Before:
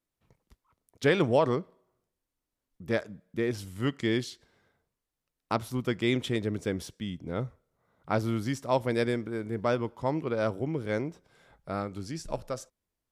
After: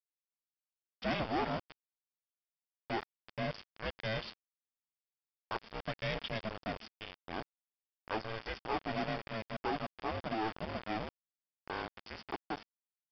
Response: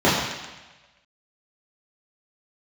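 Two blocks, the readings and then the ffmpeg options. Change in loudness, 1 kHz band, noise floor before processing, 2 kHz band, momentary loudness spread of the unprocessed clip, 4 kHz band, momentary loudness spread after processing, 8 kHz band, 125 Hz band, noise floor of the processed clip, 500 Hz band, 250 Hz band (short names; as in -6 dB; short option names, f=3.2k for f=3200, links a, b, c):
-9.0 dB, -3.5 dB, under -85 dBFS, -5.0 dB, 11 LU, -4.0 dB, 9 LU, under -20 dB, -12.0 dB, under -85 dBFS, -11.5 dB, -11.5 dB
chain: -filter_complex "[0:a]aeval=exprs='if(lt(val(0),0),0.447*val(0),val(0))':c=same,highpass=430,aeval=exprs='val(0)*sin(2*PI*220*n/s)':c=same,asplit=2[a][b];[b]aecho=0:1:332:0.0631[c];[a][c]amix=inputs=2:normalize=0,acrusher=bits=6:mix=0:aa=0.000001,aresample=11025,asoftclip=type=tanh:threshold=-33.5dB,aresample=44100,bandreject=f=4k:w=6.4,volume=5dB"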